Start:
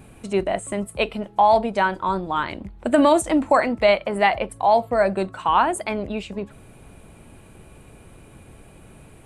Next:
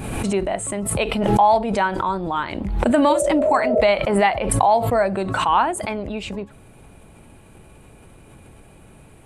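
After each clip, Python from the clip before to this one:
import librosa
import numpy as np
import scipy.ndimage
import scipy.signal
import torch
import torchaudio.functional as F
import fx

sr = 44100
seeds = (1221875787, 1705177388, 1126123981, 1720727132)

y = fx.spec_repair(x, sr, seeds[0], start_s=3.12, length_s=0.66, low_hz=330.0, high_hz=710.0, source='both')
y = fx.peak_eq(y, sr, hz=850.0, db=2.5, octaves=0.24)
y = fx.pre_swell(y, sr, db_per_s=36.0)
y = F.gain(torch.from_numpy(y), -1.0).numpy()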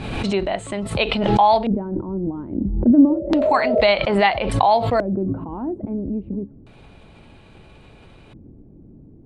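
y = fx.filter_lfo_lowpass(x, sr, shape='square', hz=0.3, low_hz=290.0, high_hz=4100.0, q=2.3)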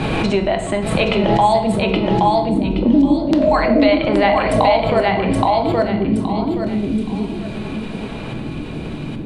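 y = fx.echo_feedback(x, sr, ms=822, feedback_pct=19, wet_db=-3)
y = fx.room_shoebox(y, sr, seeds[1], volume_m3=210.0, walls='mixed', distance_m=0.58)
y = fx.band_squash(y, sr, depth_pct=70)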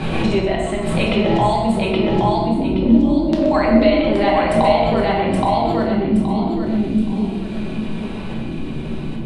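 y = x + 10.0 ** (-10.0 / 20.0) * np.pad(x, (int(125 * sr / 1000.0), 0))[:len(x)]
y = fx.room_shoebox(y, sr, seeds[2], volume_m3=250.0, walls='mixed', distance_m=1.1)
y = F.gain(torch.from_numpy(y), -5.0).numpy()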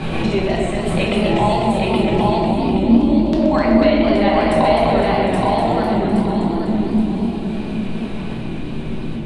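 y = fx.echo_warbled(x, sr, ms=251, feedback_pct=65, rate_hz=2.8, cents=123, wet_db=-6)
y = F.gain(torch.from_numpy(y), -1.0).numpy()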